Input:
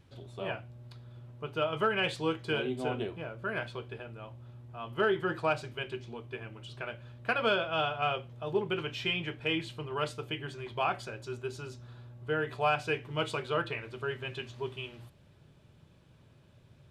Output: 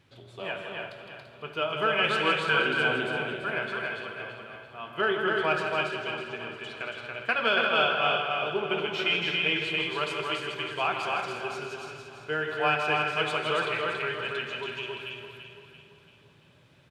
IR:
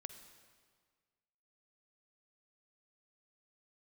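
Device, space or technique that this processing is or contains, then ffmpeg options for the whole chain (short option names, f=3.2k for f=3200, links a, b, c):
stadium PA: -filter_complex "[0:a]asettb=1/sr,asplit=3[a][b][c];[a]atrim=end=2.134[d];[b]atrim=start=2.13:end=2.75,asetpts=PTS-STARTPTS,afade=t=in:d=0.004:c=qsin,afade=t=out:st=0.616:d=0.004:c=qsin,equalizer=f=1.4k:t=o:w=0.76:g=10.5[e];[c]atrim=start=2.746[f];[d][e]acrossfade=d=0.004:c1=hsin:c2=qsin[g];[g][f]acrossfade=d=0.004:c1=qsin:c2=hsin,highpass=f=170:p=1,equalizer=f=2.3k:t=o:w=1.9:g=6,aecho=1:1:160.3|279.9:0.398|0.708,aecho=1:1:338|676|1014|1352|1690:0.355|0.167|0.0784|0.0368|0.0173[h];[1:a]atrim=start_sample=2205[i];[h][i]afir=irnorm=-1:irlink=0,volume=4.5dB"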